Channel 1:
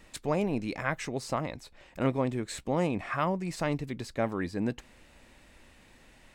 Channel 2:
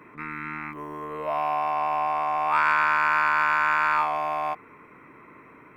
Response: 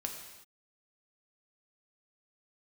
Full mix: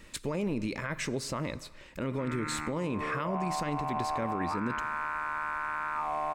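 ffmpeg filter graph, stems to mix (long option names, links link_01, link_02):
-filter_complex "[0:a]equalizer=frequency=740:width_type=o:width=0.26:gain=-14.5,volume=2dB,asplit=2[link_01][link_02];[link_02]volume=-13dB[link_03];[1:a]lowpass=1800,acompressor=threshold=-27dB:ratio=6,adelay=2000,volume=-0.5dB[link_04];[2:a]atrim=start_sample=2205[link_05];[link_03][link_05]afir=irnorm=-1:irlink=0[link_06];[link_01][link_04][link_06]amix=inputs=3:normalize=0,alimiter=limit=-23dB:level=0:latency=1:release=49"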